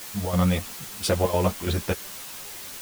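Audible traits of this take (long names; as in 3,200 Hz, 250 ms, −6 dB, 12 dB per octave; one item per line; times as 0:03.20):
chopped level 3 Hz, depth 65%, duty 75%
a quantiser's noise floor 6 bits, dither triangular
a shimmering, thickened sound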